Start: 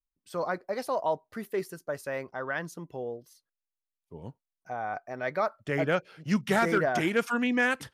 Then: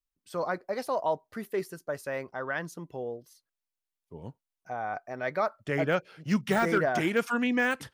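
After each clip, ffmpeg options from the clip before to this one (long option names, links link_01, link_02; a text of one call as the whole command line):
ffmpeg -i in.wav -af "deesser=0.85" out.wav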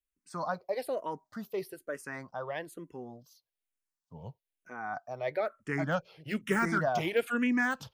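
ffmpeg -i in.wav -filter_complex "[0:a]asplit=2[link_01][link_02];[link_02]afreqshift=-1.1[link_03];[link_01][link_03]amix=inputs=2:normalize=1" out.wav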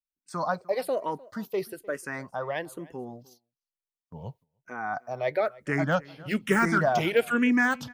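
ffmpeg -i in.wav -filter_complex "[0:a]asplit=2[link_01][link_02];[link_02]adelay=303.2,volume=-22dB,highshelf=frequency=4000:gain=-6.82[link_03];[link_01][link_03]amix=inputs=2:normalize=0,agate=range=-17dB:threshold=-58dB:ratio=16:detection=peak,volume=5.5dB" out.wav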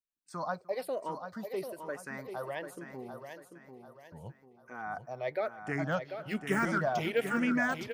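ffmpeg -i in.wav -af "aecho=1:1:742|1484|2226|2968:0.398|0.151|0.0575|0.0218,volume=-7dB" out.wav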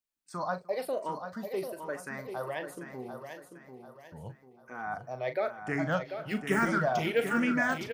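ffmpeg -i in.wav -filter_complex "[0:a]asplit=2[link_01][link_02];[link_02]adelay=39,volume=-10.5dB[link_03];[link_01][link_03]amix=inputs=2:normalize=0,volume=2dB" out.wav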